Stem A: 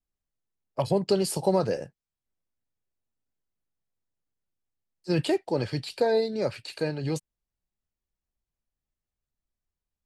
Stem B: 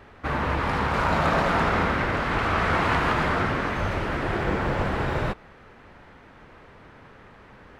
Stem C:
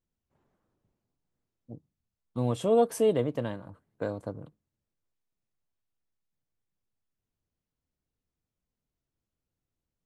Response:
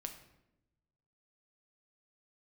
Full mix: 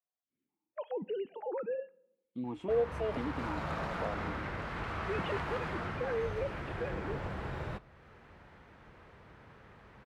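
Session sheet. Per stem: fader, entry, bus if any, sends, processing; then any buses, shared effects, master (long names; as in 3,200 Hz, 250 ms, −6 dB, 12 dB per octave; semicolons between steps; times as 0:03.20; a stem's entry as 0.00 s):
−9.0 dB, 0.00 s, no bus, send −11 dB, three sine waves on the formant tracks; brickwall limiter −22 dBFS, peak gain reduction 11 dB
−8.5 dB, 2.45 s, bus A, send −17.5 dB, high-pass filter 42 Hz; low-shelf EQ 150 Hz +5 dB
+3.0 dB, 0.00 s, bus A, no send, automatic gain control gain up to 13 dB; formant filter that steps through the vowels 4.1 Hz; automatic ducking −19 dB, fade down 0.75 s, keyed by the first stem
bus A: 0.0 dB, parametric band 270 Hz −5.5 dB 0.23 octaves; downward compressor 1.5 to 1, threshold −51 dBFS, peak gain reduction 13.5 dB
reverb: on, RT60 0.90 s, pre-delay 6 ms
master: no processing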